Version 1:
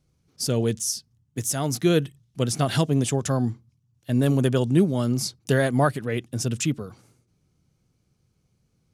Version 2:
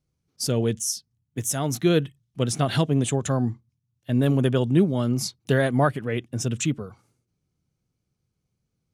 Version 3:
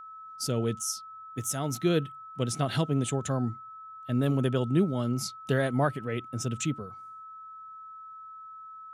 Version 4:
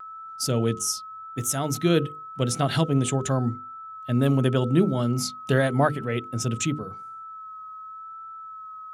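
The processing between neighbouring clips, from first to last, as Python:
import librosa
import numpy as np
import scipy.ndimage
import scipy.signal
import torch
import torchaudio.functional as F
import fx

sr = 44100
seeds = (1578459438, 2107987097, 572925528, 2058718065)

y1 = fx.noise_reduce_blind(x, sr, reduce_db=9)
y2 = y1 + 10.0 ** (-37.0 / 20.0) * np.sin(2.0 * np.pi * 1300.0 * np.arange(len(y1)) / sr)
y2 = y2 * 10.0 ** (-5.5 / 20.0)
y3 = fx.vibrato(y2, sr, rate_hz=0.88, depth_cents=21.0)
y3 = fx.hum_notches(y3, sr, base_hz=50, count=10)
y3 = y3 * 10.0 ** (5.5 / 20.0)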